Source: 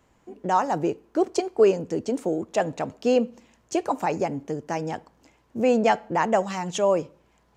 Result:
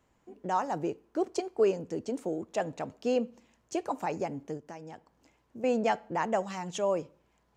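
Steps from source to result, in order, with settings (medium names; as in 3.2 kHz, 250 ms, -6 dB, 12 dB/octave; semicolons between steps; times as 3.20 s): 4.57–5.64 s: compression 2.5:1, threshold -38 dBFS, peak gain reduction 10 dB; trim -7.5 dB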